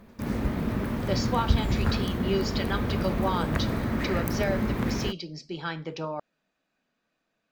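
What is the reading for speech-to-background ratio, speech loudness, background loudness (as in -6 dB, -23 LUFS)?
-4.0 dB, -33.0 LUFS, -29.0 LUFS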